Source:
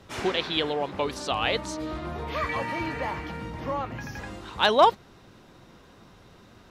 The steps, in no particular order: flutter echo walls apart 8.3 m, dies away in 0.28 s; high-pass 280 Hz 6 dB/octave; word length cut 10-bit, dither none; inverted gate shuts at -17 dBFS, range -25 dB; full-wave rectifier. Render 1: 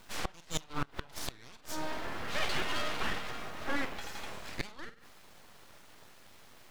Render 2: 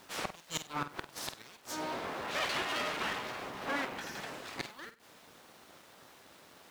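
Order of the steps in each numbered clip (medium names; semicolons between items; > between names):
word length cut > flutter echo > inverted gate > high-pass > full-wave rectifier; inverted gate > word length cut > flutter echo > full-wave rectifier > high-pass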